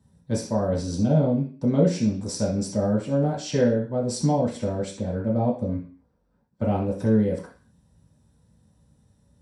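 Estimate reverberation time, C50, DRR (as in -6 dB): 0.40 s, 7.5 dB, -7.0 dB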